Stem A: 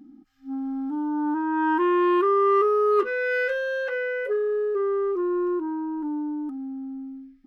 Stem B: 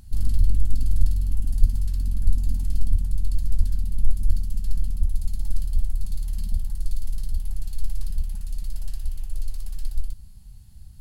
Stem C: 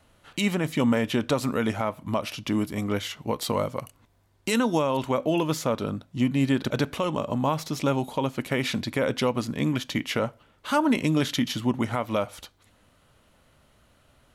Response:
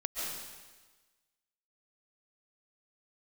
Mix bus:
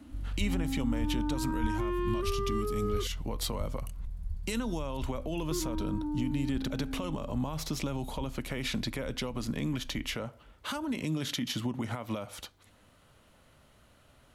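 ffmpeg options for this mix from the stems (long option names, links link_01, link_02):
-filter_complex "[0:a]volume=-3.5dB,asplit=3[link_01][link_02][link_03];[link_01]atrim=end=3.07,asetpts=PTS-STARTPTS,afade=type=out:start_time=3.066:duration=0.004:curve=hsin[link_04];[link_02]atrim=start=3.07:end=5.51,asetpts=PTS-STARTPTS,volume=0[link_05];[link_03]atrim=start=5.51,asetpts=PTS-STARTPTS,afade=type=in:duration=0.004:curve=hsin[link_06];[link_04][link_05][link_06]concat=n=3:v=0:a=1[link_07];[1:a]highpass=44,afwtdn=0.0447,volume=-9.5dB[link_08];[2:a]alimiter=limit=-22.5dB:level=0:latency=1:release=99,volume=-0.5dB[link_09];[link_07][link_08][link_09]amix=inputs=3:normalize=0,acrossover=split=240|3000[link_10][link_11][link_12];[link_11]acompressor=threshold=-35dB:ratio=6[link_13];[link_10][link_13][link_12]amix=inputs=3:normalize=0"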